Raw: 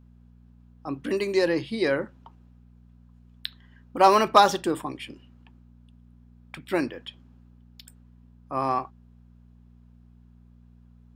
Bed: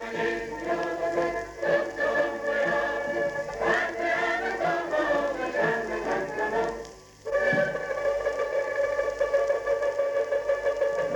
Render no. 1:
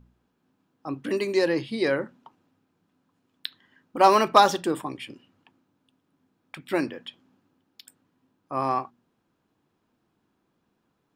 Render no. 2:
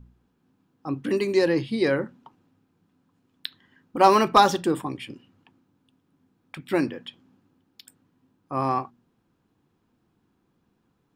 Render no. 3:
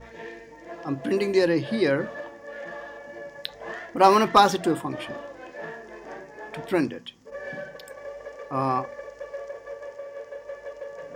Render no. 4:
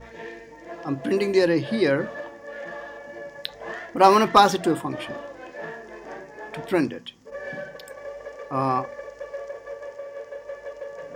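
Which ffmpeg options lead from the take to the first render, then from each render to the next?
-af "bandreject=f=60:t=h:w=4,bandreject=f=120:t=h:w=4,bandreject=f=180:t=h:w=4,bandreject=f=240:t=h:w=4"
-af "lowshelf=f=240:g=8,bandreject=f=620:w=12"
-filter_complex "[1:a]volume=-12dB[a];[0:a][a]amix=inputs=2:normalize=0"
-af "volume=1.5dB"

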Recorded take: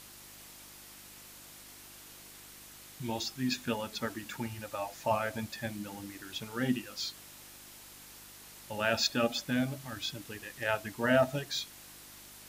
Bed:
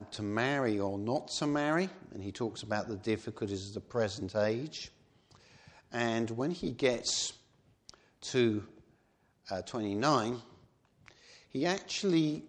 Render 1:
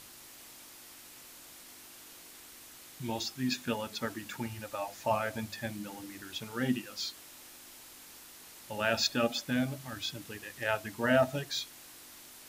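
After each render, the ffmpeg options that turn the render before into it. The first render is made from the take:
-af "bandreject=f=50:t=h:w=4,bandreject=f=100:t=h:w=4,bandreject=f=150:t=h:w=4,bandreject=f=200:t=h:w=4"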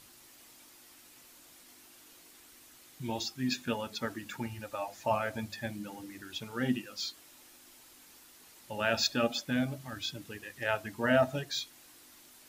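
-af "afftdn=nr=6:nf=-52"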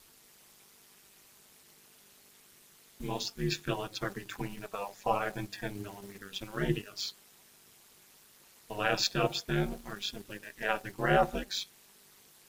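-filter_complex "[0:a]aeval=exprs='val(0)*sin(2*PI*100*n/s)':c=same,asplit=2[a][b];[b]aeval=exprs='val(0)*gte(abs(val(0)),0.00596)':c=same,volume=-7dB[c];[a][c]amix=inputs=2:normalize=0"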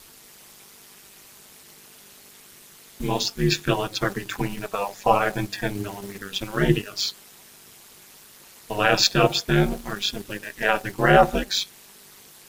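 -af "volume=11dB,alimiter=limit=-3dB:level=0:latency=1"

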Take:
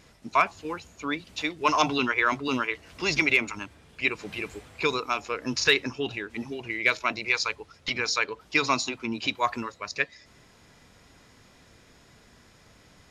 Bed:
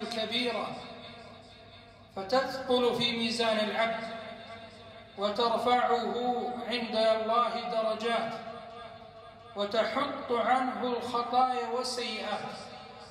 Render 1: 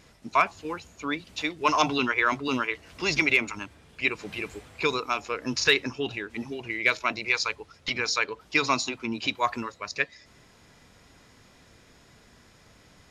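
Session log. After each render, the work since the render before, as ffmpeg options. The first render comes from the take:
-af anull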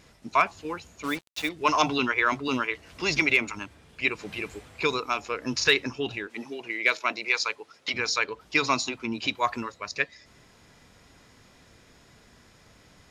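-filter_complex "[0:a]asettb=1/sr,asplit=3[a][b][c];[a]atrim=end=1.034[d];[b]atrim=start=1.03:end=1.49,asetpts=PTS-STARTPTS,afade=t=in:d=0.004:c=qsin,afade=t=out:st=0.456:d=0.004:c=qsin,acrusher=bits=5:mix=0:aa=0.5[e];[c]atrim=start=1.486[f];[d][e]acrossfade=d=0.004:c1=hsin:c2=qsin[g];[g][f]acrossfade=d=0.004:c1=qsin:c2=hsin,asettb=1/sr,asplit=3[h][i][j];[h]atrim=end=6.274[k];[i]atrim=start=6.27:end=7.94,asetpts=PTS-STARTPTS,afade=t=in:d=0.004:c=qsin,afade=t=out:st=1.666:d=0.004:c=qsin,highpass=270[l];[j]atrim=start=7.936[m];[k][l]acrossfade=d=0.004:c1=hsin:c2=qsin[n];[n][m]acrossfade=d=0.004:c1=qsin:c2=hsin"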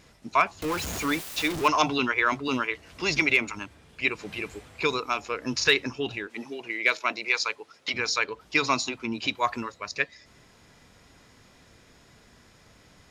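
-filter_complex "[0:a]asettb=1/sr,asplit=3[a][b][c];[a]atrim=end=0.624[d];[b]atrim=start=0.62:end=1.68,asetpts=PTS-STARTPTS,afade=t=in:d=0.004:c=qsin,afade=t=out:st=1.056:d=0.004:c=qsin,aeval=exprs='val(0)+0.5*0.0422*sgn(val(0))':c=same[e];[c]atrim=start=1.676[f];[d][e]acrossfade=d=0.004:c1=hsin:c2=qsin[g];[g][f]acrossfade=d=0.004:c1=qsin:c2=hsin"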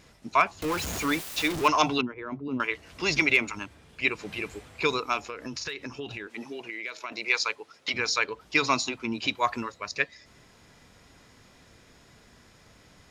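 -filter_complex "[0:a]asettb=1/sr,asplit=3[a][b][c];[a]atrim=end=2.014[d];[b]atrim=start=2.01:end=2.6,asetpts=PTS-STARTPTS,afade=t=in:d=0.004:c=qsin,afade=t=out:st=0.586:d=0.004:c=qsin,bandpass=f=180:t=q:w=0.93[e];[c]atrim=start=2.596[f];[d][e]acrossfade=d=0.004:c1=hsin:c2=qsin[g];[g][f]acrossfade=d=0.004:c1=qsin:c2=hsin,asettb=1/sr,asplit=3[h][i][j];[h]atrim=end=5.294[k];[i]atrim=start=5.29:end=7.12,asetpts=PTS-STARTPTS,afade=t=in:d=0.004:c=qsin,afade=t=out:st=1.826:d=0.004:c=qsin,acompressor=threshold=-32dB:ratio=6:attack=3.2:release=140:knee=1:detection=peak[l];[j]atrim=start=7.116[m];[k][l]acrossfade=d=0.004:c1=hsin:c2=qsin[n];[n][m]acrossfade=d=0.004:c1=qsin:c2=hsin"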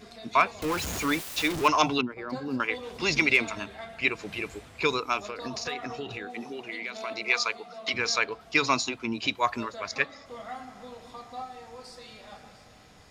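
-filter_complex "[1:a]volume=-13dB[a];[0:a][a]amix=inputs=2:normalize=0"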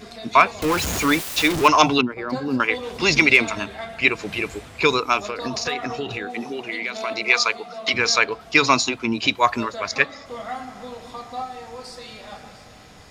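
-af "volume=8dB,alimiter=limit=-2dB:level=0:latency=1"

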